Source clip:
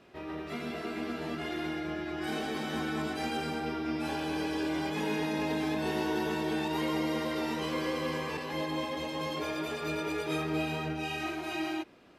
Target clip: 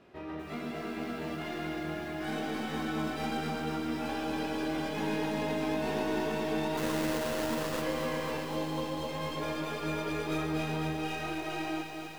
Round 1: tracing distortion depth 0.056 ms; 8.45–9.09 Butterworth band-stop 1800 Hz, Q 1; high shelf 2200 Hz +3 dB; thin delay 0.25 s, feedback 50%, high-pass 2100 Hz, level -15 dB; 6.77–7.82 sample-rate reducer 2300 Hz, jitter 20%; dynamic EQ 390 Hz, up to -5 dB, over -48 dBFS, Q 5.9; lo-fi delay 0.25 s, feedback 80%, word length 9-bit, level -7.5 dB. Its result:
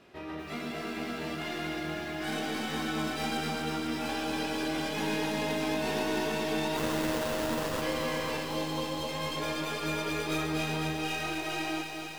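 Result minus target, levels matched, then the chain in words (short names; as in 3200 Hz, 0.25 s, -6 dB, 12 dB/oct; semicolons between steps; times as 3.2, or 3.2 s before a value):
4000 Hz band +4.0 dB
tracing distortion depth 0.056 ms; 8.45–9.09 Butterworth band-stop 1800 Hz, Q 1; high shelf 2200 Hz -5.5 dB; thin delay 0.25 s, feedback 50%, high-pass 2100 Hz, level -15 dB; 6.77–7.82 sample-rate reducer 2300 Hz, jitter 20%; dynamic EQ 390 Hz, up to -5 dB, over -48 dBFS, Q 5.9; lo-fi delay 0.25 s, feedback 80%, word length 9-bit, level -7.5 dB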